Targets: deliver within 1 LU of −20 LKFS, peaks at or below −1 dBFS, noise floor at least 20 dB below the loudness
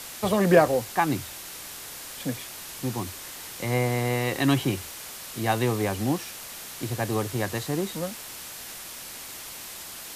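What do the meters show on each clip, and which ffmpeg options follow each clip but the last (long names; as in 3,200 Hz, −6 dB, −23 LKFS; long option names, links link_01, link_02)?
background noise floor −40 dBFS; target noise floor −48 dBFS; integrated loudness −28.0 LKFS; sample peak −4.5 dBFS; target loudness −20.0 LKFS
→ -af "afftdn=noise_reduction=8:noise_floor=-40"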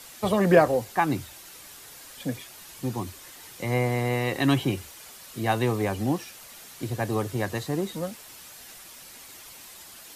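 background noise floor −46 dBFS; target noise floor −47 dBFS
→ -af "afftdn=noise_reduction=6:noise_floor=-46"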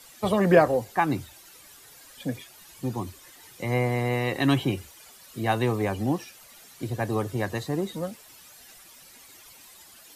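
background noise floor −51 dBFS; integrated loudness −26.5 LKFS; sample peak −4.5 dBFS; target loudness −20.0 LKFS
→ -af "volume=6.5dB,alimiter=limit=-1dB:level=0:latency=1"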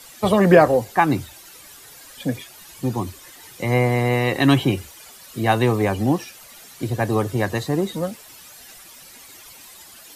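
integrated loudness −20.5 LKFS; sample peak −1.0 dBFS; background noise floor −45 dBFS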